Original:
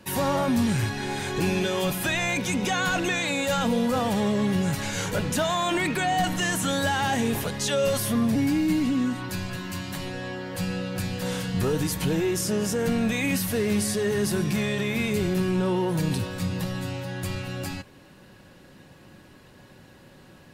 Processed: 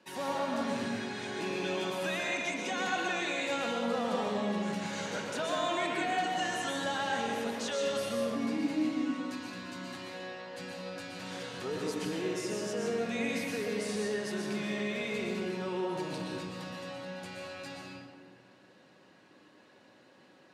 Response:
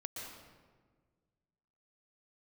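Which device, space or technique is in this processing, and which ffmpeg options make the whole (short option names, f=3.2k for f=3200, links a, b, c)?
supermarket ceiling speaker: -filter_complex "[0:a]highpass=290,lowpass=6.7k[a];[1:a]atrim=start_sample=2205[b];[a][b]afir=irnorm=-1:irlink=0,volume=-5dB"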